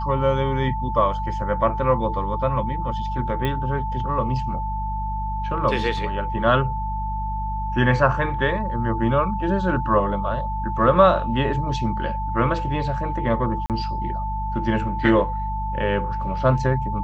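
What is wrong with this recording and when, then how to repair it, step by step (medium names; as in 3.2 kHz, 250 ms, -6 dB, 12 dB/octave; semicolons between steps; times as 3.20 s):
hum 50 Hz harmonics 4 -28 dBFS
whine 880 Hz -27 dBFS
3.45 s: pop -13 dBFS
13.66–13.70 s: dropout 38 ms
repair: de-click; de-hum 50 Hz, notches 4; band-stop 880 Hz, Q 30; interpolate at 13.66 s, 38 ms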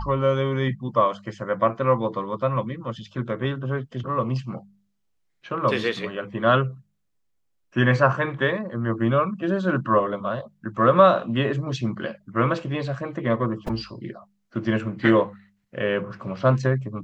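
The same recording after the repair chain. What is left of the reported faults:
nothing left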